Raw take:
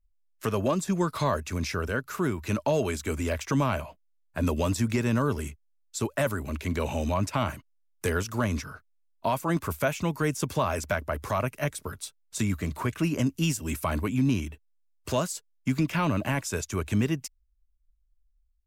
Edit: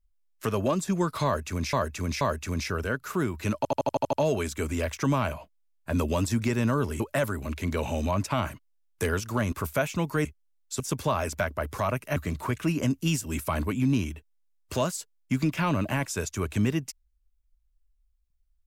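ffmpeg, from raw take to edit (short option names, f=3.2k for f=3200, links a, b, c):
-filter_complex "[0:a]asplit=15[a][b][c][d][e][f][g][h][i][j][k][l][m][n][o];[a]atrim=end=1.732[p];[b]atrim=start=1.248:end=1.732[q];[c]atrim=start=1.248:end=2.692[r];[d]atrim=start=2.608:end=2.692[s];[e]atrim=start=2.608:end=2.692[t];[f]atrim=start=2.608:end=2.692[u];[g]atrim=start=2.608:end=2.692[v];[h]atrim=start=2.608:end=2.692[w];[i]atrim=start=2.608:end=2.692[x];[j]atrim=start=2.608:end=5.482[y];[k]atrim=start=6.028:end=8.552[z];[l]atrim=start=9.578:end=10.312[aa];[m]atrim=start=5.478:end=6.032[ab];[n]atrim=start=10.308:end=11.672[ac];[o]atrim=start=12.518[ad];[p][q]acrossfade=d=0.004:c1=hsin:c2=hsin[ae];[ae][r]acrossfade=d=0.004:c1=hsin:c2=hsin[af];[af][s]acrossfade=d=0.004:c1=hsin:c2=hsin[ag];[ag][t]acrossfade=d=0.004:c1=hsin:c2=hsin[ah];[ah][u]acrossfade=d=0.004:c1=hsin:c2=hsin[ai];[ai][v]acrossfade=d=0.004:c1=hsin:c2=hsin[aj];[aj][w]acrossfade=d=0.004:c1=hsin:c2=hsin[ak];[ak][x]acrossfade=d=0.004:c1=hsin:c2=hsin[al];[al][y]acrossfade=d=0.004:c1=hsin:c2=hsin[am];[am][z]acrossfade=d=0.004:c1=hsin:c2=hsin[an];[an][aa]acrossfade=d=0.004:c1=hsin:c2=hsin[ao];[ao][ab]acrossfade=d=0.004:c1=hsin:c2=hsin[ap];[ap][ac]acrossfade=d=0.004:c1=hsin:c2=hsin[aq];[aq][ad]acrossfade=d=0.004:c1=hsin:c2=hsin"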